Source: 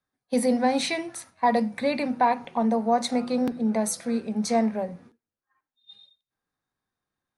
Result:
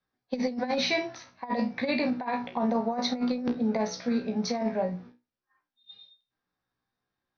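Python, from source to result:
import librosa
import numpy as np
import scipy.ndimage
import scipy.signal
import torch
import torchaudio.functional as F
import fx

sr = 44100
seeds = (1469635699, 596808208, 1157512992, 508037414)

y = scipy.signal.sosfilt(scipy.signal.butter(16, 5900.0, 'lowpass', fs=sr, output='sos'), x)
y = fx.comb_fb(y, sr, f0_hz=61.0, decay_s=0.24, harmonics='all', damping=0.0, mix_pct=90)
y = fx.over_compress(y, sr, threshold_db=-31.0, ratio=-0.5)
y = F.gain(torch.from_numpy(y), 4.5).numpy()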